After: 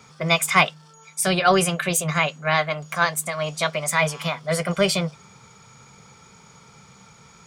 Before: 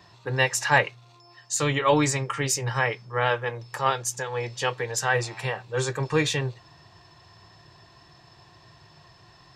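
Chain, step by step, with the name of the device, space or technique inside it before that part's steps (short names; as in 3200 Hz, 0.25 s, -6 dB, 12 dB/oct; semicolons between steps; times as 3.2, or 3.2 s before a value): nightcore (varispeed +28%); gain +3.5 dB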